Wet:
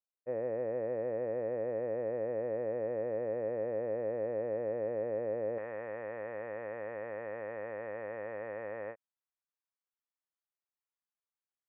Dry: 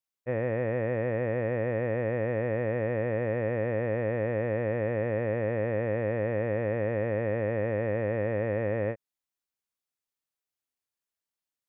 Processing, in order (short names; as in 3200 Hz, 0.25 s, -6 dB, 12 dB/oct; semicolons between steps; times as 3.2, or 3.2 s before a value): band-pass 540 Hz, Q 1.2, from 5.58 s 1100 Hz; gain -4 dB